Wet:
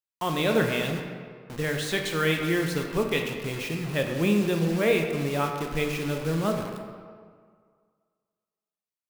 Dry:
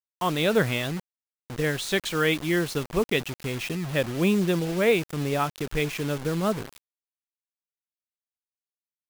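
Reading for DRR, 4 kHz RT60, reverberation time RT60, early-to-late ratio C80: 2.5 dB, 1.1 s, 1.9 s, 6.0 dB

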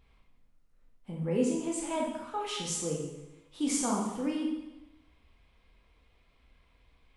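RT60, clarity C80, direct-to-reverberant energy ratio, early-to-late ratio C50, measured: 1.0 s, 5.0 dB, −2.5 dB, 2.0 dB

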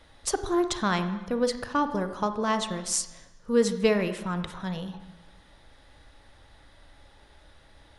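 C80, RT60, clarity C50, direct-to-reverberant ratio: 12.0 dB, 1.1 s, 10.5 dB, 9.0 dB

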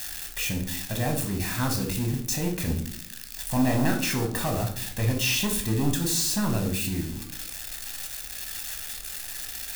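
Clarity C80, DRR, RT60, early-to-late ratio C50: 13.0 dB, 2.5 dB, 0.60 s, 8.0 dB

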